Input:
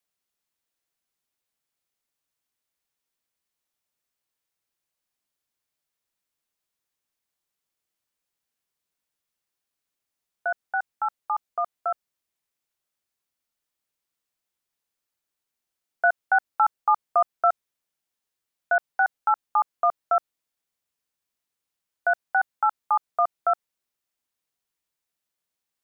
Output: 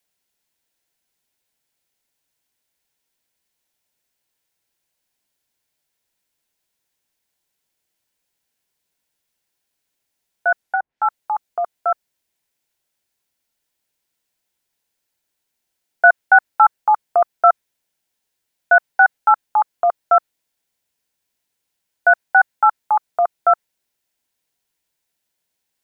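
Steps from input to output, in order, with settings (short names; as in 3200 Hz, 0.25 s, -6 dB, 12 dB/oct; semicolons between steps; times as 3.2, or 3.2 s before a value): 10.62–11.03 treble ducked by the level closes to 1000 Hz, closed at -25.5 dBFS; notch 1200 Hz, Q 5.3; dynamic EQ 1600 Hz, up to +4 dB, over -31 dBFS, Q 1.3; gain +8 dB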